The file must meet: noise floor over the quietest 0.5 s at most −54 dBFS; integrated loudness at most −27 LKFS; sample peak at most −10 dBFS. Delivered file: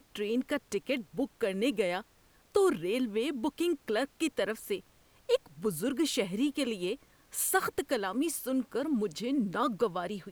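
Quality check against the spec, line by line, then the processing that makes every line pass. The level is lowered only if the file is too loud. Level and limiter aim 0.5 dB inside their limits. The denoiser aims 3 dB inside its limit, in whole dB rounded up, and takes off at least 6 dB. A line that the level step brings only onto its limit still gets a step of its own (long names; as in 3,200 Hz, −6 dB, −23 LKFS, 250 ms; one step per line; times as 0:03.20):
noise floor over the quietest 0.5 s −64 dBFS: in spec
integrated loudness −32.0 LKFS: in spec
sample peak −14.0 dBFS: in spec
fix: no processing needed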